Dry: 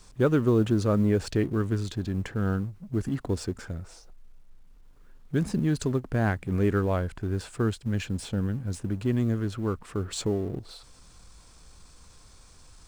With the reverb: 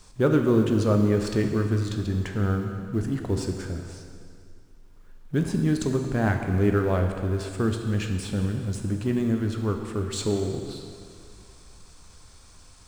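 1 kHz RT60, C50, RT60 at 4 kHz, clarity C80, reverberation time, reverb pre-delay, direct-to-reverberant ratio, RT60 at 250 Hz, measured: 2.2 s, 5.5 dB, 2.1 s, 6.0 dB, 2.2 s, 5 ms, 3.5 dB, 2.2 s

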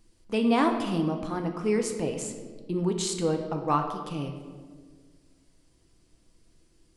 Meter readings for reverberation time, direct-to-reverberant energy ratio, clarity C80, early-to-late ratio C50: 1.7 s, 4.0 dB, 8.5 dB, 7.0 dB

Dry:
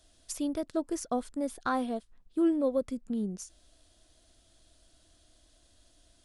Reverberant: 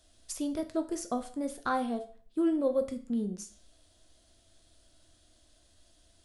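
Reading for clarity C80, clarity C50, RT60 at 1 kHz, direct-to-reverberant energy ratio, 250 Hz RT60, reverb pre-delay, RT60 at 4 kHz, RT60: 18.0 dB, 13.5 dB, 0.45 s, 7.0 dB, 0.45 s, 9 ms, 0.40 s, 0.40 s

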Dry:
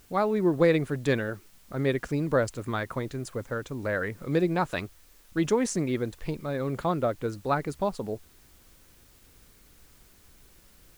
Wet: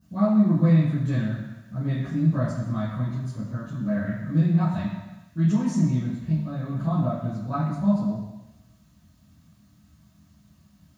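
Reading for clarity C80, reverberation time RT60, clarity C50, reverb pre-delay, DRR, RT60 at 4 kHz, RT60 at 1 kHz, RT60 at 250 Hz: 4.0 dB, 1.1 s, 0.5 dB, 3 ms, -14.0 dB, 1.0 s, 1.1 s, 0.95 s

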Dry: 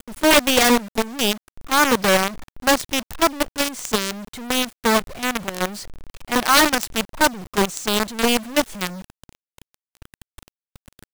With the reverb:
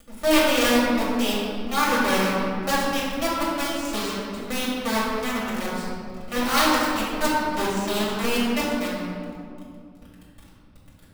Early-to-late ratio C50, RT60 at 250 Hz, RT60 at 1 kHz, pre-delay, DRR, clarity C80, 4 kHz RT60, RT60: -1.5 dB, 3.4 s, 2.3 s, 3 ms, -8.5 dB, 0.5 dB, 1.2 s, 2.5 s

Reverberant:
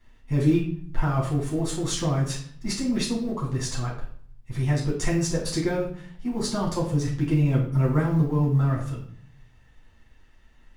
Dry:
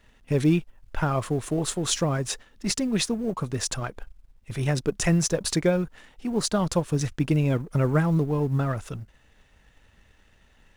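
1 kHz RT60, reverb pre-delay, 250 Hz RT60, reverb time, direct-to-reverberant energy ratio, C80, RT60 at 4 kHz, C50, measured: 0.55 s, 7 ms, 0.75 s, 0.55 s, -5.5 dB, 10.0 dB, 0.45 s, 6.0 dB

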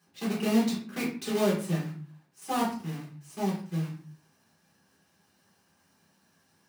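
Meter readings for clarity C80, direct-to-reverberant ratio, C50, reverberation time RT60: 11.0 dB, -6.0 dB, 6.0 dB, 0.45 s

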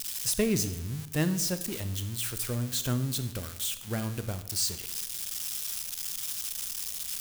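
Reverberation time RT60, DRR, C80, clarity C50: 1.0 s, 10.5 dB, 14.5 dB, 12.5 dB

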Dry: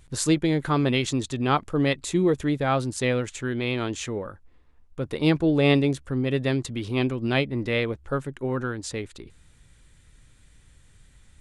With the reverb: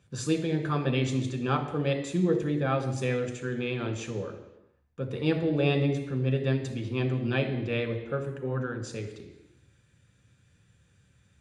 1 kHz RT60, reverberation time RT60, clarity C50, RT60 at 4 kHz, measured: 1.0 s, 1.0 s, 8.5 dB, 1.0 s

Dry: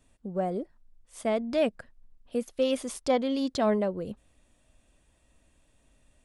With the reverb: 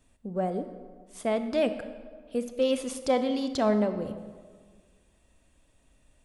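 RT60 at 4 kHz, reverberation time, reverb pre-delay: 1.0 s, 1.7 s, 26 ms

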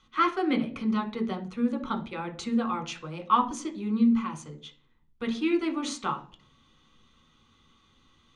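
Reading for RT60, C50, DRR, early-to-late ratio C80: 0.45 s, 14.5 dB, 2.5 dB, 19.5 dB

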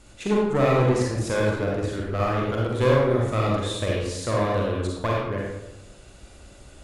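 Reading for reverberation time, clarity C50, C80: 0.95 s, -1.5 dB, 2.0 dB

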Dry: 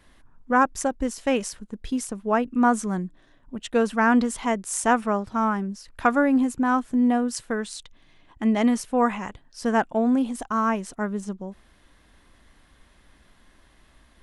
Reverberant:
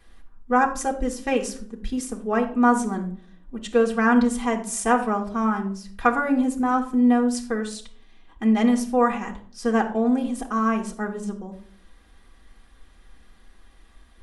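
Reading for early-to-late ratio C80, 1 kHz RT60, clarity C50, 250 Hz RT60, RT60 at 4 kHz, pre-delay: 15.5 dB, 0.45 s, 11.0 dB, 0.70 s, 0.35 s, 3 ms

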